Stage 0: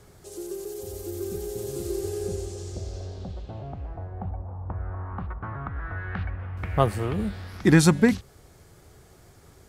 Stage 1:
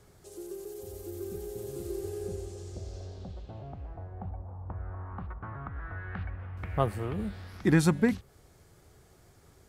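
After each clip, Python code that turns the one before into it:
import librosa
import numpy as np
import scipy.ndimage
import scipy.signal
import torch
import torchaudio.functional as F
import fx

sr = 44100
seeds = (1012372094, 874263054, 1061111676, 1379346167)

y = fx.dynamic_eq(x, sr, hz=5800.0, q=0.71, threshold_db=-49.0, ratio=4.0, max_db=-5)
y = F.gain(torch.from_numpy(y), -6.0).numpy()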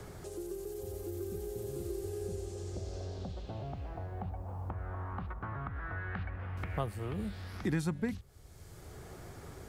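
y = fx.band_squash(x, sr, depth_pct=70)
y = F.gain(torch.from_numpy(y), -2.0).numpy()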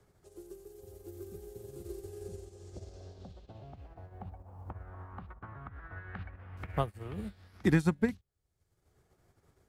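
y = fx.upward_expand(x, sr, threshold_db=-52.0, expansion=2.5)
y = F.gain(torch.from_numpy(y), 8.0).numpy()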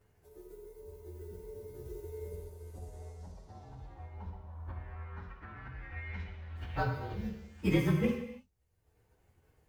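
y = fx.partial_stretch(x, sr, pct=113)
y = fx.rev_gated(y, sr, seeds[0], gate_ms=350, shape='falling', drr_db=1.0)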